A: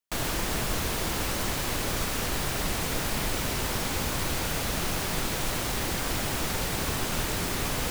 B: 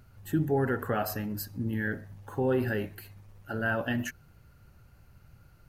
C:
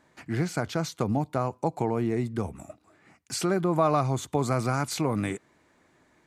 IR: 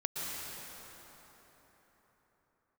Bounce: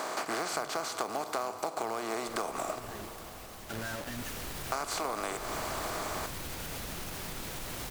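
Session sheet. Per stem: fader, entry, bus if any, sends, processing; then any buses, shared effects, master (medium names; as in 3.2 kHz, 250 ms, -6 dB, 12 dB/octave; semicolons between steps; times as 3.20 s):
4.02 s -16.5 dB -> 4.29 s -8.5 dB, 2.15 s, no send, peaking EQ 16 kHz +3 dB; peak limiter -21 dBFS, peak gain reduction 6 dB
-3.5 dB, 0.20 s, no send, peak limiter -26.5 dBFS, peak gain reduction 9.5 dB; bit crusher 6-bit; auto duck -12 dB, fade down 0.80 s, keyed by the third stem
+1.0 dB, 0.00 s, muted 2.80–4.72 s, send -19 dB, spectral levelling over time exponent 0.4; high-pass 540 Hz 12 dB/octave; short-mantissa float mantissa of 2-bit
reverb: on, RT60 4.4 s, pre-delay 108 ms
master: compression 5:1, threshold -31 dBFS, peak gain reduction 12.5 dB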